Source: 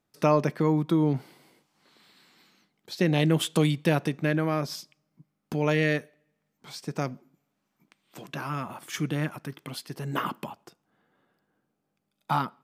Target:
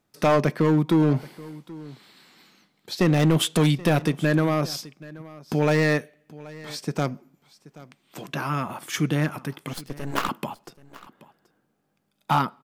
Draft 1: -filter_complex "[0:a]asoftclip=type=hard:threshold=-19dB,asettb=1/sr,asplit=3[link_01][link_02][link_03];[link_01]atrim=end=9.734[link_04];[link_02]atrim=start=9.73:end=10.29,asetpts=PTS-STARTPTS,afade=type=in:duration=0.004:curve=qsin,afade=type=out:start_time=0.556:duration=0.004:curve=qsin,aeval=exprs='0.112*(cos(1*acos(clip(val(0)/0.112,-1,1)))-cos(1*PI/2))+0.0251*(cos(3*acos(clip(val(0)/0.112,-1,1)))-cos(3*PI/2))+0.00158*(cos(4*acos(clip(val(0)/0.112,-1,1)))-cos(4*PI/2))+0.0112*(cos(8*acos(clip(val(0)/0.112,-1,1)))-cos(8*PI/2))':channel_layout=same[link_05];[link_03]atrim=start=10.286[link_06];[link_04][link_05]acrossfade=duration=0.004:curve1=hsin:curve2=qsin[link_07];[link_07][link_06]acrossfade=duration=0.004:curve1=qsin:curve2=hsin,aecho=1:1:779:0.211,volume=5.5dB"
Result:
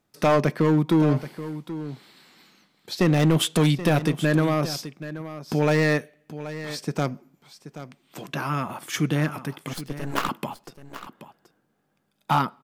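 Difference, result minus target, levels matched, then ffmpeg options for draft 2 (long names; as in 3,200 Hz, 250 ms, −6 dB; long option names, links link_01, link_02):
echo-to-direct +6.5 dB
-filter_complex "[0:a]asoftclip=type=hard:threshold=-19dB,asettb=1/sr,asplit=3[link_01][link_02][link_03];[link_01]atrim=end=9.734[link_04];[link_02]atrim=start=9.73:end=10.29,asetpts=PTS-STARTPTS,afade=type=in:duration=0.004:curve=qsin,afade=type=out:start_time=0.556:duration=0.004:curve=qsin,aeval=exprs='0.112*(cos(1*acos(clip(val(0)/0.112,-1,1)))-cos(1*PI/2))+0.0251*(cos(3*acos(clip(val(0)/0.112,-1,1)))-cos(3*PI/2))+0.00158*(cos(4*acos(clip(val(0)/0.112,-1,1)))-cos(4*PI/2))+0.0112*(cos(8*acos(clip(val(0)/0.112,-1,1)))-cos(8*PI/2))':channel_layout=same[link_05];[link_03]atrim=start=10.286[link_06];[link_04][link_05]acrossfade=duration=0.004:curve1=hsin:curve2=qsin[link_07];[link_07][link_06]acrossfade=duration=0.004:curve1=qsin:curve2=hsin,aecho=1:1:779:0.1,volume=5.5dB"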